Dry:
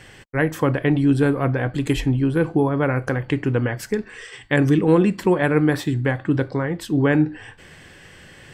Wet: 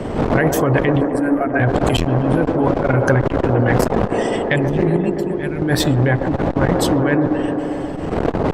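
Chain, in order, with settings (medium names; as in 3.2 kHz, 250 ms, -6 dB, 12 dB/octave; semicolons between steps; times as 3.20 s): expander on every frequency bin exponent 1.5; wind noise 460 Hz -28 dBFS; 4.58–5.00 s: spectral replace 300–2400 Hz after; 4.96–5.62 s: amplifier tone stack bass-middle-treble 6-0-2; in parallel at 0 dB: peak limiter -14 dBFS, peak gain reduction 7 dB; on the sum: compressor with a negative ratio -20 dBFS, ratio -1; 1.01–1.60 s: static phaser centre 700 Hz, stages 8; on a send: feedback echo behind a band-pass 131 ms, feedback 82%, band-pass 530 Hz, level -4 dB; on the sum: transformer saturation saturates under 390 Hz; trim +5.5 dB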